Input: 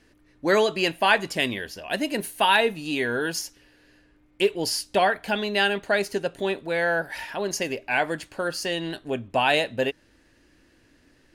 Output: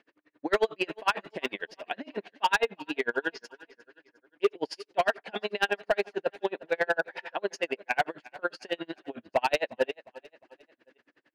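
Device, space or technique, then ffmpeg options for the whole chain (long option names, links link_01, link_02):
helicopter radio: -filter_complex "[0:a]asettb=1/sr,asplit=3[link_01][link_02][link_03];[link_01]atrim=end=1.824[link_04];[link_02]atrim=start=1.82:end=3.44,asetpts=PTS-STARTPTS,afade=type=in:duration=0.004:curve=qsin,afade=type=out:start_time=1.616:duration=0.004:curve=qsin,lowpass=frequency=5300:width=0.5412,lowpass=frequency=5300:width=1.3066[link_05];[link_03]atrim=start=3.436[link_06];[link_04][link_05]acrossfade=duration=0.004:curve1=hsin:curve2=qsin[link_07];[link_07][link_06]acrossfade=duration=0.004:curve1=qsin:curve2=hsin,highpass=360,lowpass=2700,aeval=exprs='val(0)*pow(10,-38*(0.5-0.5*cos(2*PI*11*n/s))/20)':channel_layout=same,asoftclip=type=hard:threshold=-20.5dB,aecho=1:1:356|712|1068:0.1|0.042|0.0176,volume=4dB"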